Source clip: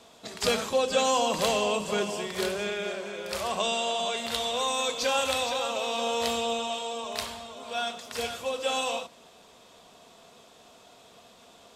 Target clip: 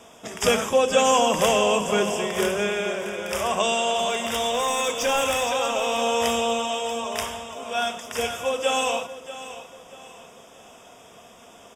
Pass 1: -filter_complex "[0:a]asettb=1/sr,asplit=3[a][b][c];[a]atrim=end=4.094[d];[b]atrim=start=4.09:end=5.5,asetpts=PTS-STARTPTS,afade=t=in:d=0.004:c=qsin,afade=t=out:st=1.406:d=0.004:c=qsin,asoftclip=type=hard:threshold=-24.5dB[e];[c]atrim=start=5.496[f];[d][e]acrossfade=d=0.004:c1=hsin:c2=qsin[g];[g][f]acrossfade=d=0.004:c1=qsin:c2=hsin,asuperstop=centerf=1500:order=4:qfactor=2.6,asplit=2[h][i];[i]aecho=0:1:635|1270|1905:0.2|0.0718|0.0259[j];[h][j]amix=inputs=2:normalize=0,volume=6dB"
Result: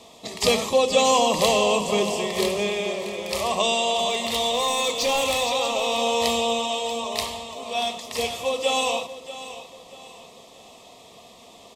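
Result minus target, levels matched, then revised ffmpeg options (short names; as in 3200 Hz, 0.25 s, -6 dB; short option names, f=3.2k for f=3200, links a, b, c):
4000 Hz band +2.5 dB
-filter_complex "[0:a]asettb=1/sr,asplit=3[a][b][c];[a]atrim=end=4.094[d];[b]atrim=start=4.09:end=5.5,asetpts=PTS-STARTPTS,afade=t=in:d=0.004:c=qsin,afade=t=out:st=1.406:d=0.004:c=qsin,asoftclip=type=hard:threshold=-24.5dB[e];[c]atrim=start=5.496[f];[d][e]acrossfade=d=0.004:c1=hsin:c2=qsin[g];[g][f]acrossfade=d=0.004:c1=qsin:c2=hsin,asuperstop=centerf=4200:order=4:qfactor=2.6,asplit=2[h][i];[i]aecho=0:1:635|1270|1905:0.2|0.0718|0.0259[j];[h][j]amix=inputs=2:normalize=0,volume=6dB"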